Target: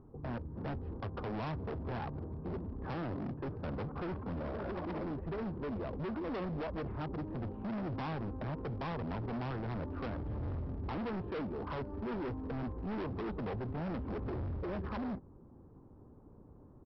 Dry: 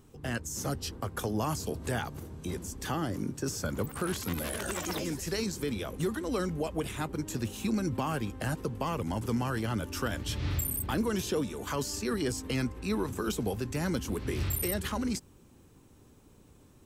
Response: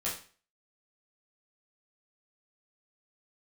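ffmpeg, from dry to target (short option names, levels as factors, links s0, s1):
-af "lowpass=f=1100:w=0.5412,lowpass=f=1100:w=1.3066,aresample=11025,asoftclip=type=hard:threshold=0.0133,aresample=44100,volume=1.19"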